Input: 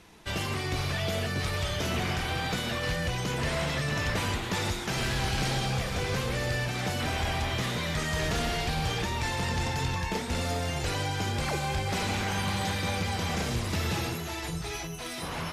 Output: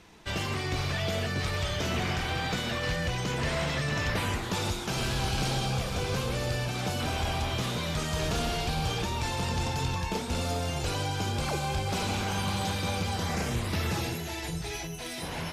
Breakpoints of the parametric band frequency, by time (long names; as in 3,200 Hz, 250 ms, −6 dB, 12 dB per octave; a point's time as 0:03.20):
parametric band −8.5 dB 0.34 octaves
0:04.05 11,000 Hz
0:04.54 1,900 Hz
0:13.12 1,900 Hz
0:13.81 8,300 Hz
0:14.06 1,200 Hz